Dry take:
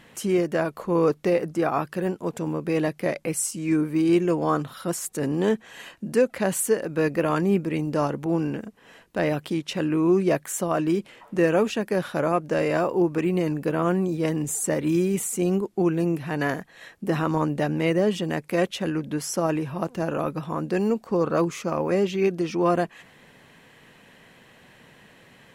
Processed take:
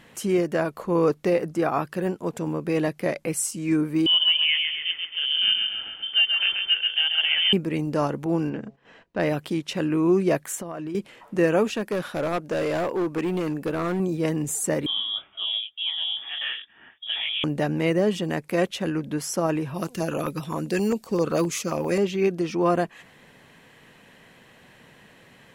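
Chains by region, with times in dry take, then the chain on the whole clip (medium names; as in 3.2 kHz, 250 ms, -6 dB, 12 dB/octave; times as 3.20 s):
4.06–7.53 s: distance through air 490 m + feedback delay 134 ms, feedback 52%, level -4.5 dB + frequency inversion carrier 3.3 kHz
8.49–9.20 s: distance through air 130 m + de-hum 136.5 Hz, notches 7 + gate -55 dBFS, range -9 dB
10.55–10.95 s: treble shelf 4.7 kHz -6 dB + compression 12:1, threshold -29 dBFS
11.70–14.00 s: peaking EQ 120 Hz -6 dB 0.85 oct + hard clipper -21.5 dBFS
14.86–17.44 s: frequency inversion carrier 3.5 kHz + comb of notches 520 Hz + detune thickener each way 57 cents
19.74–21.98 s: treble shelf 3.1 kHz +11 dB + LFO notch saw down 7.6 Hz 530–2100 Hz
whole clip: none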